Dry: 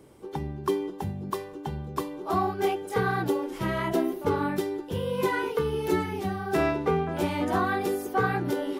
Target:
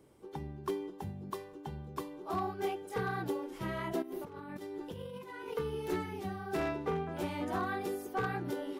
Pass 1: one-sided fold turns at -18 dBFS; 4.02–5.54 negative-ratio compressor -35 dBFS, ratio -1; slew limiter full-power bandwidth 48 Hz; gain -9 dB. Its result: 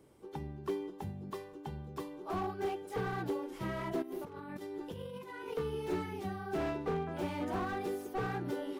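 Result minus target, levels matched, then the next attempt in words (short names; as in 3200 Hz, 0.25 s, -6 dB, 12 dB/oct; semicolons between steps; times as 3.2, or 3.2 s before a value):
slew limiter: distortion +32 dB
one-sided fold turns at -18 dBFS; 4.02–5.54 negative-ratio compressor -35 dBFS, ratio -1; slew limiter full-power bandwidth 186 Hz; gain -9 dB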